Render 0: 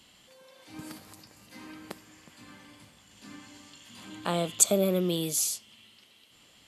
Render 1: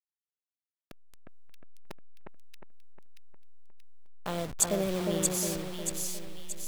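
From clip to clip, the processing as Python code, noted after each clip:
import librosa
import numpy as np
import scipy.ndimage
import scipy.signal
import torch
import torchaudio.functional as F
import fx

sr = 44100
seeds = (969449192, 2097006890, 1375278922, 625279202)

y = fx.delta_hold(x, sr, step_db=-29.5)
y = fx.echo_split(y, sr, split_hz=2200.0, low_ms=358, high_ms=630, feedback_pct=52, wet_db=-3)
y = F.gain(torch.from_numpy(y), -5.0).numpy()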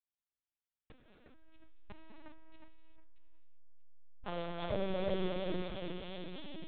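y = fx.rev_gated(x, sr, seeds[0], gate_ms=430, shape='flat', drr_db=-2.0)
y = fx.lpc_vocoder(y, sr, seeds[1], excitation='pitch_kept', order=10)
y = F.gain(torch.from_numpy(y), -7.0).numpy()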